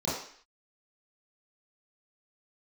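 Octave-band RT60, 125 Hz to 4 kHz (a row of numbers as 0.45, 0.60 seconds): 0.35, 0.50, 0.50, 0.55, 0.65, 0.60 seconds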